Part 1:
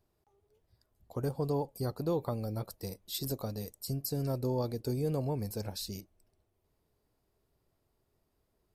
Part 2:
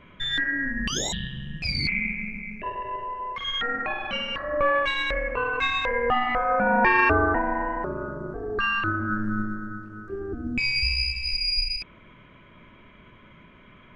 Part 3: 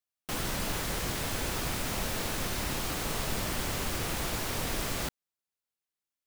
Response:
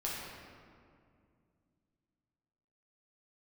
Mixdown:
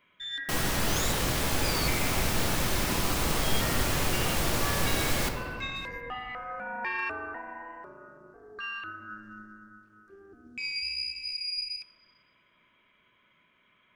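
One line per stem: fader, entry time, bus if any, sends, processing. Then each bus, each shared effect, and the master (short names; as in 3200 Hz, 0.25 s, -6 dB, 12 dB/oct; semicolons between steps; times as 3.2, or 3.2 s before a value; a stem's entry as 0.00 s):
-15.0 dB, 0.00 s, no send, de-esser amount 95%
-15.5 dB, 0.00 s, send -18 dB, tilt +3.5 dB/oct
0.0 dB, 0.20 s, send -3.5 dB, dry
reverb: on, RT60 2.3 s, pre-delay 6 ms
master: dry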